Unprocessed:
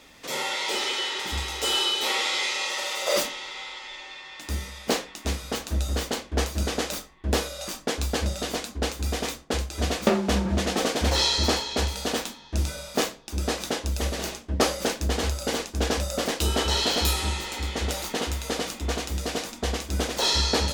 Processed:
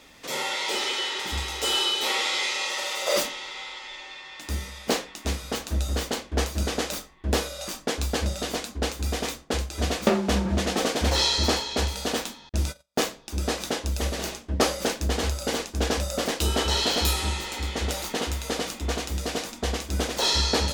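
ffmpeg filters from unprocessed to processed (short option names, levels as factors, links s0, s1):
-filter_complex "[0:a]asettb=1/sr,asplit=3[s0][s1][s2];[s0]atrim=end=12.494[s3];[s1]atrim=start=12.49:end=13.03,asetpts=PTS-STARTPTS,afade=t=in:d=0.004:c=qsin,afade=t=out:st=0.536:d=0.004:c=qsin,agate=range=0.00708:threshold=0.02:ratio=16:release=100:detection=peak[s4];[s2]atrim=start=13.026[s5];[s3][s4]acrossfade=d=0.004:c1=hsin:c2=qsin[s6];[s6][s5]acrossfade=d=0.004:c1=qsin:c2=hsin"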